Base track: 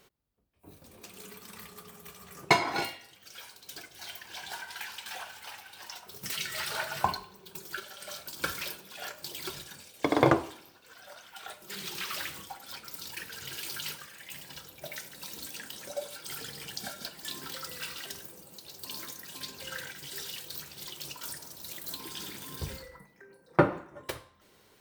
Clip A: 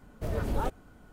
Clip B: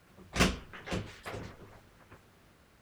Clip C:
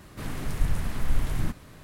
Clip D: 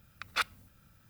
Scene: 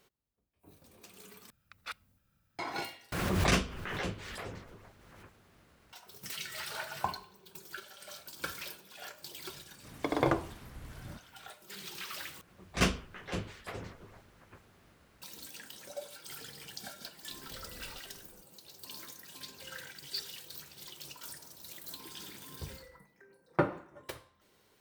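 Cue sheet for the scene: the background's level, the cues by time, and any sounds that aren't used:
base track -6 dB
1.50 s: replace with D -12 dB
3.12 s: replace with B -2 dB + swell ahead of each attack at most 28 dB/s
9.66 s: add C -15.5 dB + high-pass 53 Hz
12.41 s: replace with B -1 dB
17.30 s: add A -9 dB + compression, threshold -40 dBFS
19.77 s: add D -0.5 dB + ladder band-pass 4.7 kHz, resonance 90%

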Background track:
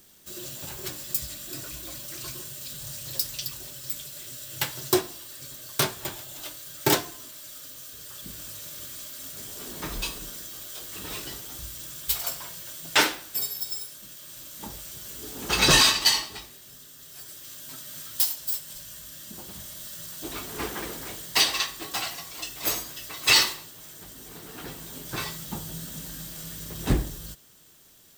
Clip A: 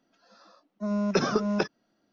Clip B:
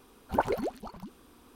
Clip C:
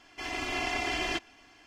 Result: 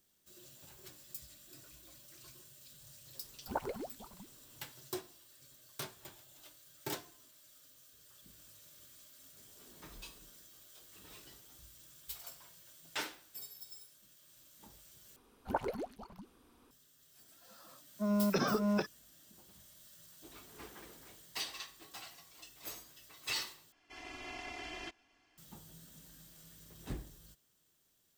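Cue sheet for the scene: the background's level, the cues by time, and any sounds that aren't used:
background track -19 dB
3.17 s: add B -10.5 dB
15.16 s: replace with B -8 dB
17.19 s: add A -3.5 dB + peak limiter -18.5 dBFS
23.72 s: replace with C -14 dB

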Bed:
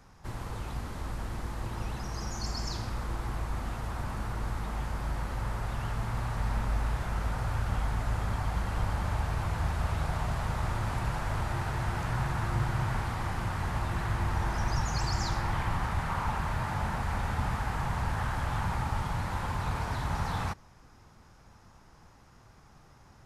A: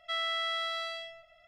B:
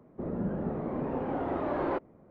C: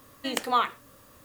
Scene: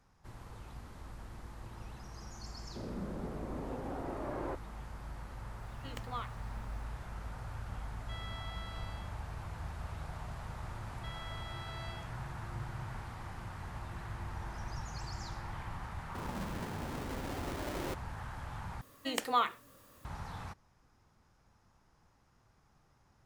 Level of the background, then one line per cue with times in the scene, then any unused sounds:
bed -12 dB
2.57 s: add B -9 dB
5.60 s: add C -17.5 dB + peaking EQ 10 kHz -9 dB
8.00 s: add A -16 dB
10.95 s: add A -10 dB + peak limiter -31 dBFS
15.96 s: add B -13.5 dB + square wave that keeps the level
18.81 s: replace with C -5.5 dB

